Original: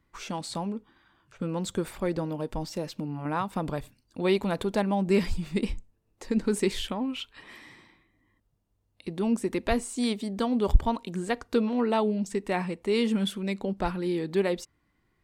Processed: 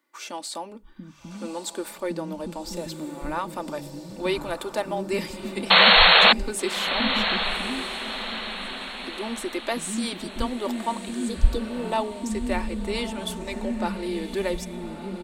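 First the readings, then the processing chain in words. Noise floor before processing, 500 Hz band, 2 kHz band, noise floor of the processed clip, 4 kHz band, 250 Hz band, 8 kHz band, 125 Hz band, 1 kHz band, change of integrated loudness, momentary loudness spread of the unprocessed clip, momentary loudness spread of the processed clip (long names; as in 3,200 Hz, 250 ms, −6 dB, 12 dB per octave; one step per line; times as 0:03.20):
−73 dBFS, +0.5 dB, +15.0 dB, −42 dBFS, +17.0 dB, −1.5 dB, +6.0 dB, −3.0 dB, +7.5 dB, +6.0 dB, 11 LU, 18 LU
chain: mains-hum notches 50/100/150/200 Hz
healed spectral selection 0:11.21–0:11.85, 510–3,300 Hz
high-shelf EQ 6,200 Hz +7 dB
comb filter 3.4 ms, depth 44%
multiband delay without the direct sound highs, lows 690 ms, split 270 Hz
sound drawn into the spectrogram noise, 0:05.70–0:06.33, 450–4,400 Hz −14 dBFS
on a send: feedback delay with all-pass diffusion 1,195 ms, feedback 46%, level −10 dB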